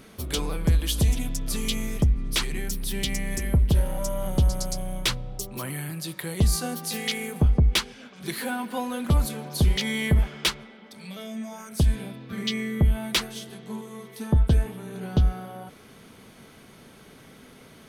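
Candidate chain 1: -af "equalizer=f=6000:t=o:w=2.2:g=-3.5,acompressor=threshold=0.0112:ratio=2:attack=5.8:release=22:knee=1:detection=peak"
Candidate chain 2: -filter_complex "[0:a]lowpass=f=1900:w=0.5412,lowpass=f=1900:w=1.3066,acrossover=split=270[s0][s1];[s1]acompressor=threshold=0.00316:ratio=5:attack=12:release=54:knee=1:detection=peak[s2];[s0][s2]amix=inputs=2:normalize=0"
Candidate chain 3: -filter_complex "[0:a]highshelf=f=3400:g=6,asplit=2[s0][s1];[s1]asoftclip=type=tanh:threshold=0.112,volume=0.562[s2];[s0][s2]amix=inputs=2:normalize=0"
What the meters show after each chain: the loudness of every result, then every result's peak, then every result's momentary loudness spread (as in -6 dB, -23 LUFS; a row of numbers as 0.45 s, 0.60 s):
-36.0 LUFS, -27.5 LUFS, -22.5 LUFS; -19.5 dBFS, -13.0 dBFS, -7.0 dBFS; 15 LU, 17 LU, 14 LU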